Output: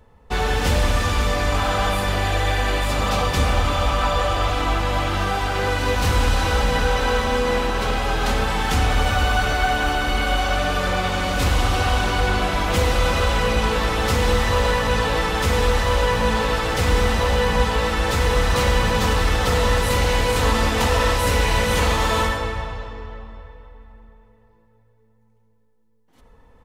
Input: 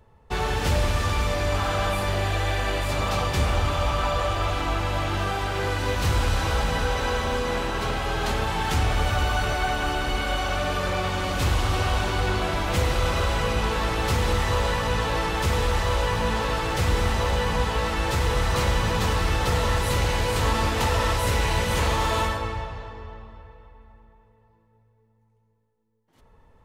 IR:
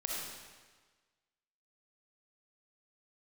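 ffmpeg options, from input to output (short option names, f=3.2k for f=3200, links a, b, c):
-filter_complex "[0:a]aecho=1:1:4:0.35,asplit=2[a][b];[1:a]atrim=start_sample=2205[c];[b][c]afir=irnorm=-1:irlink=0,volume=-12dB[d];[a][d]amix=inputs=2:normalize=0,volume=2dB"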